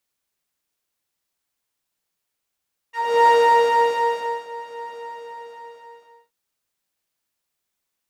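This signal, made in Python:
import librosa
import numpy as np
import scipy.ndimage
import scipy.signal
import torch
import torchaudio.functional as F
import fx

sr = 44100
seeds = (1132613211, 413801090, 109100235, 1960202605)

y = fx.sub_patch_pwm(sr, seeds[0], note=82, wave2='triangle', interval_st=-12, detune_cents=16, level2_db=-7.0, sub_db=-15.0, noise_db=-6.5, kind='bandpass', cutoff_hz=590.0, q=1.5, env_oct=2.0, env_decay_s=0.09, env_sustain_pct=0, attack_ms=342.0, decay_s=1.19, sustain_db=-20.5, release_s=1.37, note_s=2.01, lfo_hz=3.8, width_pct=19, width_swing_pct=13)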